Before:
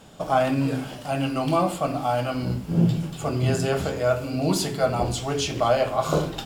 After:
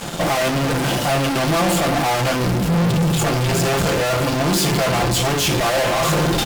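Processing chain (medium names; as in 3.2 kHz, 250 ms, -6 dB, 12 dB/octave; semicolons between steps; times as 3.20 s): fuzz box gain 44 dB, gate -50 dBFS; comb 5.8 ms, depth 38%; trim -4.5 dB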